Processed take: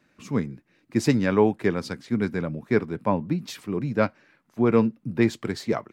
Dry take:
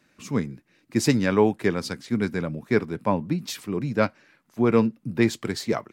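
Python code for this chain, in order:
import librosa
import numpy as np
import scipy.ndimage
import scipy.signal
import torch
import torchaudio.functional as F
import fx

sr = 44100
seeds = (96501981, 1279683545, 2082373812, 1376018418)

y = fx.high_shelf(x, sr, hz=3700.0, db=-7.5)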